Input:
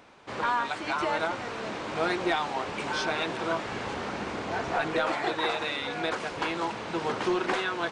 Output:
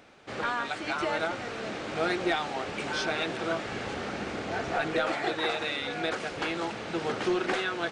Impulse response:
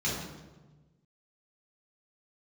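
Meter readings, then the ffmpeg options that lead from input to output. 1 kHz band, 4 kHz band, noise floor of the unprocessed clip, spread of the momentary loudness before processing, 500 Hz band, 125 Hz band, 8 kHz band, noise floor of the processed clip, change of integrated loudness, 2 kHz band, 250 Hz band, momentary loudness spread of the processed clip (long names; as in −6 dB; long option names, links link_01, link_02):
−3.0 dB, 0.0 dB, −38 dBFS, 6 LU, −0.5 dB, 0.0 dB, 0.0 dB, −38 dBFS, −1.0 dB, −0.5 dB, 0.0 dB, 6 LU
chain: -af "equalizer=frequency=990:width=5:gain=-9.5"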